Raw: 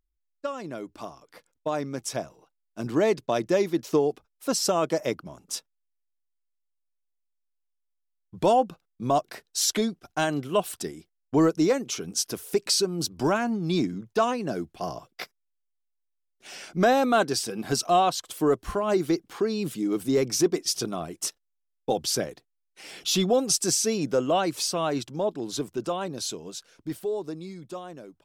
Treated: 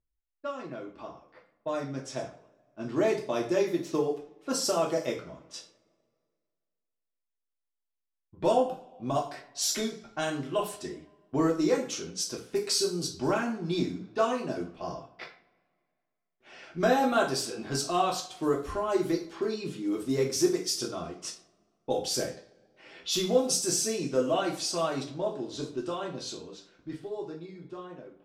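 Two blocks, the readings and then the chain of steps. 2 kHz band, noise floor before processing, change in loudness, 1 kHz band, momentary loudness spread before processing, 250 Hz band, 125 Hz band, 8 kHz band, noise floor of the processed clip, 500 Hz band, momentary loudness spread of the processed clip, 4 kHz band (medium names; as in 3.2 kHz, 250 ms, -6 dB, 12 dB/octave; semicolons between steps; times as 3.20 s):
-3.5 dB, -78 dBFS, -3.5 dB, -5.0 dB, 15 LU, -4.0 dB, -4.5 dB, -4.0 dB, -85 dBFS, -3.5 dB, 17 LU, -3.5 dB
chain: two-slope reverb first 0.41 s, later 2.1 s, from -26 dB, DRR -2 dB; level-controlled noise filter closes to 2.1 kHz, open at -18 dBFS; trim -7.5 dB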